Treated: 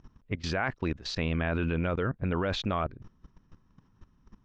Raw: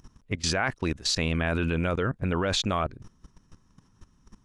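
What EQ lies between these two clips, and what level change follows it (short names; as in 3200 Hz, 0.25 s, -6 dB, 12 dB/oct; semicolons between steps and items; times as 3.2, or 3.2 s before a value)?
air absorption 200 m; -2.0 dB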